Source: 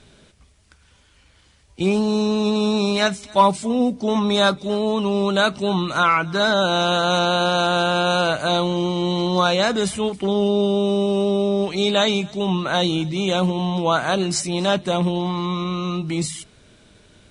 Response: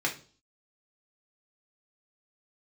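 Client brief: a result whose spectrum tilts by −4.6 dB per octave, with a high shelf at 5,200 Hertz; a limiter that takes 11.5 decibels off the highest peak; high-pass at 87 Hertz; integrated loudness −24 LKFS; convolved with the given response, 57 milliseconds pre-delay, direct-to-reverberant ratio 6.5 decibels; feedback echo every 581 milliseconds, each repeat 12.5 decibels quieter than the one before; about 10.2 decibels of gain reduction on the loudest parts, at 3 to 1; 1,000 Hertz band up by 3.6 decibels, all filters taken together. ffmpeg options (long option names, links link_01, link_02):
-filter_complex "[0:a]highpass=87,equalizer=frequency=1000:width_type=o:gain=4.5,highshelf=frequency=5200:gain=3.5,acompressor=threshold=-19dB:ratio=3,alimiter=limit=-19.5dB:level=0:latency=1,aecho=1:1:581|1162|1743:0.237|0.0569|0.0137,asplit=2[link_01][link_02];[1:a]atrim=start_sample=2205,adelay=57[link_03];[link_02][link_03]afir=irnorm=-1:irlink=0,volume=-15dB[link_04];[link_01][link_04]amix=inputs=2:normalize=0,volume=3.5dB"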